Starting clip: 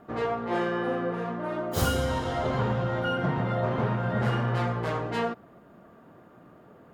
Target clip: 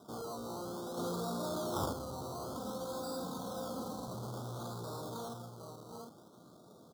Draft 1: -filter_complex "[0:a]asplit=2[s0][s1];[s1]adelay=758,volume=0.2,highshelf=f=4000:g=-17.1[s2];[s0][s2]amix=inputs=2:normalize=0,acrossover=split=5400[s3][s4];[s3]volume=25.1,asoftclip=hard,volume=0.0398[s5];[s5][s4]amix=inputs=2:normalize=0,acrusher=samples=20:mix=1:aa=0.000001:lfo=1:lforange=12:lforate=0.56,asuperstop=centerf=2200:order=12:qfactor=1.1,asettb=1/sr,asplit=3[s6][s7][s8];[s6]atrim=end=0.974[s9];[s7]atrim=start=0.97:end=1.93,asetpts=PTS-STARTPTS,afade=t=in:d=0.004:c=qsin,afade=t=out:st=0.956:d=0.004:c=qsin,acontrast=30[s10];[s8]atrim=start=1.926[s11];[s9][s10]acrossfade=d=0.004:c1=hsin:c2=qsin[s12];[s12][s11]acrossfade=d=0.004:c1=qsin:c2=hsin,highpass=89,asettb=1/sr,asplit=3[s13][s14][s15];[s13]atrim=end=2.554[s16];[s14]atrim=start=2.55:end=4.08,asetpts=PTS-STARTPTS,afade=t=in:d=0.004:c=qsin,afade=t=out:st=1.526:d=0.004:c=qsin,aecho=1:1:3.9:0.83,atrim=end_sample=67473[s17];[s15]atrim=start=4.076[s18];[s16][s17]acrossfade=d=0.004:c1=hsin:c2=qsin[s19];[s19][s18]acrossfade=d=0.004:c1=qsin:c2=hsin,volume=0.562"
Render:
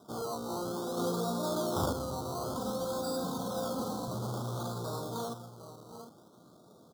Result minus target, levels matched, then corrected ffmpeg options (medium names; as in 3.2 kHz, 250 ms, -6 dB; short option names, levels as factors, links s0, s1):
overload inside the chain: distortion -4 dB
-filter_complex "[0:a]asplit=2[s0][s1];[s1]adelay=758,volume=0.2,highshelf=f=4000:g=-17.1[s2];[s0][s2]amix=inputs=2:normalize=0,acrossover=split=5400[s3][s4];[s3]volume=59.6,asoftclip=hard,volume=0.0168[s5];[s5][s4]amix=inputs=2:normalize=0,acrusher=samples=20:mix=1:aa=0.000001:lfo=1:lforange=12:lforate=0.56,asuperstop=centerf=2200:order=12:qfactor=1.1,asettb=1/sr,asplit=3[s6][s7][s8];[s6]atrim=end=0.974[s9];[s7]atrim=start=0.97:end=1.93,asetpts=PTS-STARTPTS,afade=t=in:d=0.004:c=qsin,afade=t=out:st=0.956:d=0.004:c=qsin,acontrast=30[s10];[s8]atrim=start=1.926[s11];[s9][s10]acrossfade=d=0.004:c1=hsin:c2=qsin[s12];[s12][s11]acrossfade=d=0.004:c1=qsin:c2=hsin,highpass=89,asettb=1/sr,asplit=3[s13][s14][s15];[s13]atrim=end=2.554[s16];[s14]atrim=start=2.55:end=4.08,asetpts=PTS-STARTPTS,afade=t=in:d=0.004:c=qsin,afade=t=out:st=1.526:d=0.004:c=qsin,aecho=1:1:3.9:0.83,atrim=end_sample=67473[s17];[s15]atrim=start=4.076[s18];[s16][s17]acrossfade=d=0.004:c1=hsin:c2=qsin[s19];[s19][s18]acrossfade=d=0.004:c1=qsin:c2=hsin,volume=0.562"